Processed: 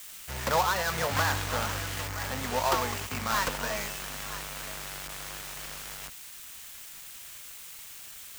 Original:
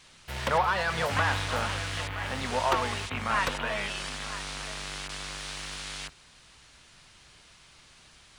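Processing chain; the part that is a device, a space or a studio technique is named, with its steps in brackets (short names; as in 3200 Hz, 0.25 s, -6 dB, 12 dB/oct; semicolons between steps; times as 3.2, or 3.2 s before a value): budget class-D amplifier (switching dead time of 0.13 ms; switching spikes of -30 dBFS)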